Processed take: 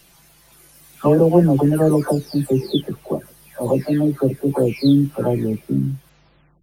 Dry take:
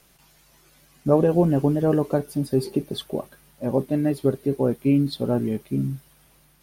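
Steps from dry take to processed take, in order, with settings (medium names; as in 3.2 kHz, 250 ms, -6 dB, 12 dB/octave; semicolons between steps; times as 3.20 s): delay that grows with frequency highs early, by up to 536 ms; trim +6 dB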